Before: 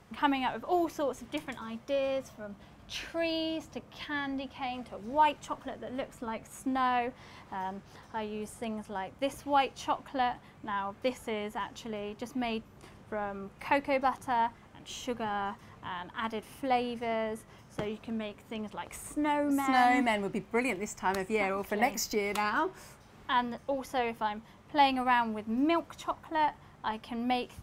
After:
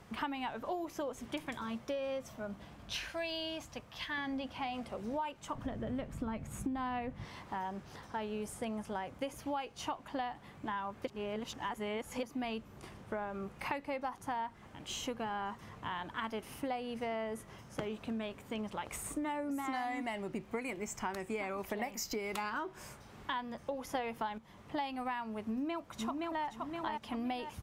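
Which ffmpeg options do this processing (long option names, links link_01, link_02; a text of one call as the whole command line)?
ffmpeg -i in.wav -filter_complex "[0:a]asettb=1/sr,asplit=3[link_01][link_02][link_03];[link_01]atrim=end=2.994[link_04];[link_02]atrim=start=2.99:end=4.18,asetpts=PTS-STARTPTS,afade=type=in:duration=0.004:curve=qsin,afade=type=out:start_time=1.186:duration=0.004:curve=qsin,equalizer=frequency=310:width=0.6:gain=-9[link_05];[link_03]atrim=start=4.176[link_06];[link_04][link_05]acrossfade=duration=0.004:curve1=hsin:curve2=qsin[link_07];[link_07][link_06]acrossfade=duration=0.004:curve1=qsin:curve2=hsin,asettb=1/sr,asplit=3[link_08][link_09][link_10];[link_08]atrim=end=5.554[link_11];[link_09]atrim=start=5.55:end=7.25,asetpts=PTS-STARTPTS,afade=type=in:duration=0.004:curve=qsin,afade=type=out:start_time=1.696:duration=0.004:curve=qsin,bass=frequency=250:gain=14,treble=frequency=4000:gain=-3[link_12];[link_10]atrim=start=7.246[link_13];[link_11][link_12]acrossfade=duration=0.004:curve1=hsin:curve2=qsin[link_14];[link_14][link_13]acrossfade=duration=0.004:curve1=qsin:curve2=hsin,asplit=2[link_15][link_16];[link_16]afade=type=in:start_time=25.43:duration=0.01,afade=type=out:start_time=26.45:duration=0.01,aecho=0:1:520|1040|1560|2080:0.530884|0.18581|0.0650333|0.0227617[link_17];[link_15][link_17]amix=inputs=2:normalize=0,asplit=5[link_18][link_19][link_20][link_21][link_22];[link_18]atrim=end=11.062[link_23];[link_19]atrim=start=11.058:end=12.232,asetpts=PTS-STARTPTS,areverse[link_24];[link_20]atrim=start=12.228:end=23.952[link_25];[link_21]atrim=start=23.948:end=24.382,asetpts=PTS-STARTPTS,volume=9dB[link_26];[link_22]atrim=start=24.378[link_27];[link_23][link_24]acrossfade=duration=0.004:curve1=hsin:curve2=hsin[link_28];[link_28][link_25]acrossfade=duration=0.004:curve1=hsin:curve2=hsin[link_29];[link_29][link_26]acrossfade=duration=0.004:curve1=hsin:curve2=hsin[link_30];[link_30][link_27]acrossfade=duration=0.004:curve1=hsin:curve2=hsin,acompressor=threshold=-36dB:ratio=10,volume=1.5dB" out.wav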